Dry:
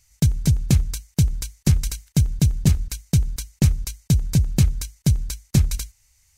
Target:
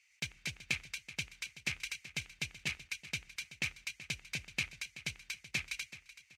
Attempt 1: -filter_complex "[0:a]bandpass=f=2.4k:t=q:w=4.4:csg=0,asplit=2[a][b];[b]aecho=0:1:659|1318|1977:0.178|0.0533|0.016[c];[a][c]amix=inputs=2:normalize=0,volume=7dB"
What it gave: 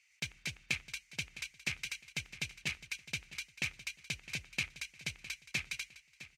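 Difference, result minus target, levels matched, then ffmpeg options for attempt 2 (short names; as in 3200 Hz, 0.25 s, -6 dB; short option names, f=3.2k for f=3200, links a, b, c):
echo 0.28 s late
-filter_complex "[0:a]bandpass=f=2.4k:t=q:w=4.4:csg=0,asplit=2[a][b];[b]aecho=0:1:379|758|1137:0.178|0.0533|0.016[c];[a][c]amix=inputs=2:normalize=0,volume=7dB"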